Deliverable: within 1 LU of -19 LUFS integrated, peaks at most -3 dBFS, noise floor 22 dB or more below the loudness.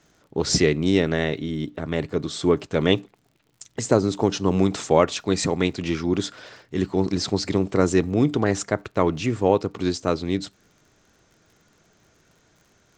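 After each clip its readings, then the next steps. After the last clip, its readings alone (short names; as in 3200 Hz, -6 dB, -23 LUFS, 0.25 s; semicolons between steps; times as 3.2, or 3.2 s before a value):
ticks 55/s; loudness -23.0 LUFS; peak -2.0 dBFS; loudness target -19.0 LUFS
-> de-click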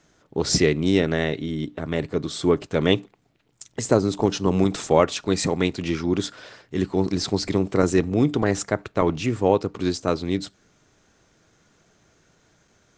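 ticks 0/s; loudness -23.0 LUFS; peak -2.0 dBFS; loudness target -19.0 LUFS
-> gain +4 dB; limiter -3 dBFS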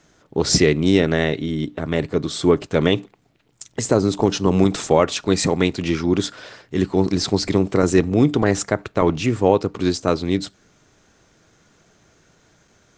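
loudness -19.5 LUFS; peak -3.0 dBFS; noise floor -59 dBFS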